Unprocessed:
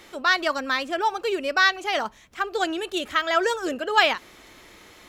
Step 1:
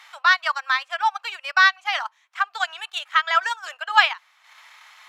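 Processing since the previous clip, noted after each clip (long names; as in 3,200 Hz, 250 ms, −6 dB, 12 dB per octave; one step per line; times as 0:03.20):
transient designer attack +1 dB, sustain −11 dB
Butterworth high-pass 850 Hz 36 dB per octave
high-shelf EQ 5,700 Hz −11.5 dB
level +4.5 dB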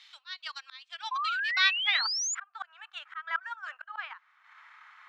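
band-pass filter sweep 3,900 Hz → 1,400 Hz, 0:01.54–0:02.18
sound drawn into the spectrogram rise, 0:01.11–0:02.35, 1,000–7,200 Hz −31 dBFS
volume swells 371 ms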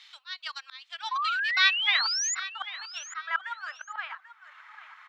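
repeating echo 790 ms, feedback 23%, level −15 dB
level +2.5 dB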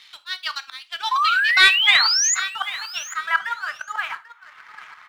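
leveller curve on the samples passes 1
reverb whose tail is shaped and stops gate 110 ms falling, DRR 10.5 dB
level +5.5 dB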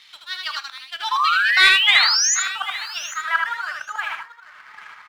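single-tap delay 79 ms −3.5 dB
level −1 dB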